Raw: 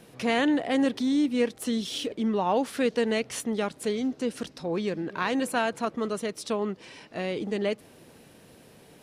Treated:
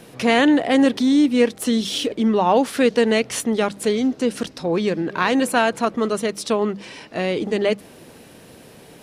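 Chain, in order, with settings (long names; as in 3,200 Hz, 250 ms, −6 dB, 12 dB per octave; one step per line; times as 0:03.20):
mains-hum notches 50/100/150/200 Hz
level +8.5 dB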